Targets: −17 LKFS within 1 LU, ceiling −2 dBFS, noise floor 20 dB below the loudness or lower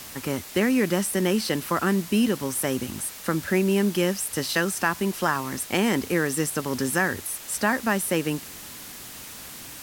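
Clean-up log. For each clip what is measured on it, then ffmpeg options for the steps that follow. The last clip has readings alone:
background noise floor −41 dBFS; target noise floor −45 dBFS; integrated loudness −25.0 LKFS; sample peak −8.0 dBFS; target loudness −17.0 LKFS
→ -af "afftdn=noise_reduction=6:noise_floor=-41"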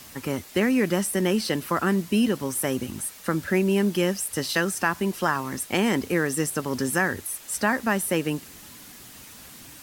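background noise floor −46 dBFS; integrated loudness −25.0 LKFS; sample peak −8.0 dBFS; target loudness −17.0 LKFS
→ -af "volume=8dB,alimiter=limit=-2dB:level=0:latency=1"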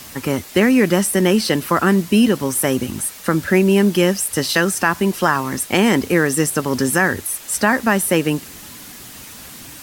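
integrated loudness −17.0 LKFS; sample peak −2.0 dBFS; background noise floor −38 dBFS

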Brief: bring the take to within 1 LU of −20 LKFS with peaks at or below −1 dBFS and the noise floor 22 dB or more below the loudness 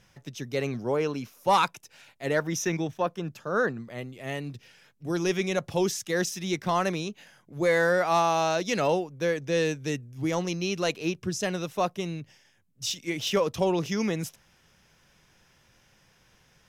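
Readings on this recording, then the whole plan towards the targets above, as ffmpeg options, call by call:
integrated loudness −28.0 LKFS; sample peak −11.5 dBFS; target loudness −20.0 LKFS
→ -af "volume=8dB"

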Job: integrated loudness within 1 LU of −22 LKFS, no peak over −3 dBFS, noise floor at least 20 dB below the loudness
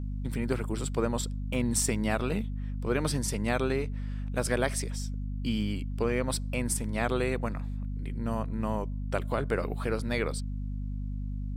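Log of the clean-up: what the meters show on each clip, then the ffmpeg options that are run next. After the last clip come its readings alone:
mains hum 50 Hz; hum harmonics up to 250 Hz; level of the hum −31 dBFS; integrated loudness −31.5 LKFS; sample peak −11.0 dBFS; target loudness −22.0 LKFS
→ -af "bandreject=frequency=50:width_type=h:width=4,bandreject=frequency=100:width_type=h:width=4,bandreject=frequency=150:width_type=h:width=4,bandreject=frequency=200:width_type=h:width=4,bandreject=frequency=250:width_type=h:width=4"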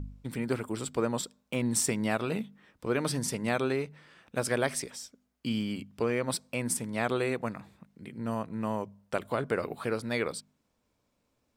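mains hum none found; integrated loudness −32.0 LKFS; sample peak −12.0 dBFS; target loudness −22.0 LKFS
→ -af "volume=10dB,alimiter=limit=-3dB:level=0:latency=1"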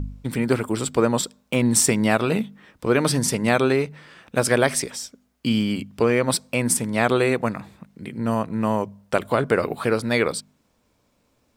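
integrated loudness −22.0 LKFS; sample peak −3.0 dBFS; background noise floor −66 dBFS

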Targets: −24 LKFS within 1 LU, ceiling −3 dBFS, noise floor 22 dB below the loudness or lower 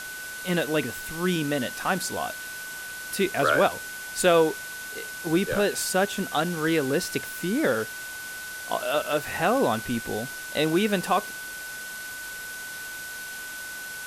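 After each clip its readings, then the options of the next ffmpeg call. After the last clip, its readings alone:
interfering tone 1,500 Hz; level of the tone −36 dBFS; background noise floor −37 dBFS; target noise floor −49 dBFS; integrated loudness −27.0 LKFS; sample peak −8.5 dBFS; target loudness −24.0 LKFS
→ -af "bandreject=frequency=1500:width=30"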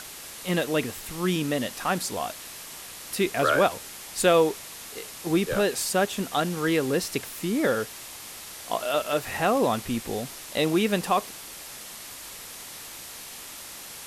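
interfering tone none found; background noise floor −42 dBFS; target noise floor −48 dBFS
→ -af "afftdn=noise_reduction=6:noise_floor=-42"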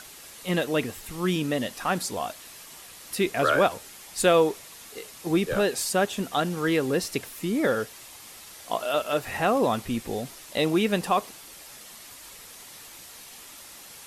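background noise floor −46 dBFS; target noise floor −48 dBFS
→ -af "afftdn=noise_reduction=6:noise_floor=-46"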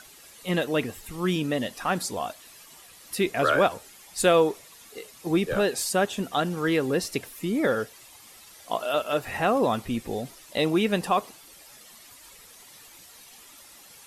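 background noise floor −50 dBFS; integrated loudness −26.0 LKFS; sample peak −8.5 dBFS; target loudness −24.0 LKFS
→ -af "volume=2dB"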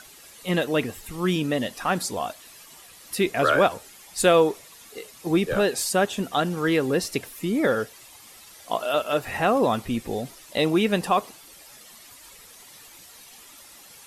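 integrated loudness −24.0 LKFS; sample peak −6.5 dBFS; background noise floor −48 dBFS

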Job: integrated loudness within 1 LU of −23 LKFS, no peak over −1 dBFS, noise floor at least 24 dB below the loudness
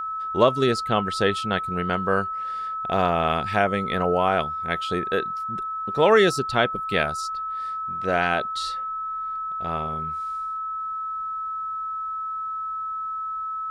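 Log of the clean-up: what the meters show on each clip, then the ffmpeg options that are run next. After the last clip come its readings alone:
interfering tone 1,300 Hz; level of the tone −27 dBFS; integrated loudness −24.5 LKFS; sample peak −4.5 dBFS; target loudness −23.0 LKFS
→ -af "bandreject=frequency=1300:width=30"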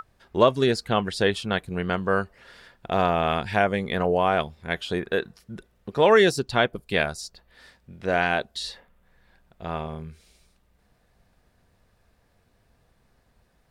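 interfering tone none found; integrated loudness −24.0 LKFS; sample peak −4.0 dBFS; target loudness −23.0 LKFS
→ -af "volume=1dB"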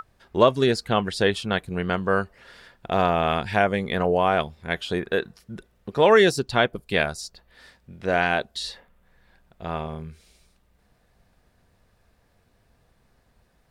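integrated loudness −23.0 LKFS; sample peak −3.0 dBFS; background noise floor −65 dBFS

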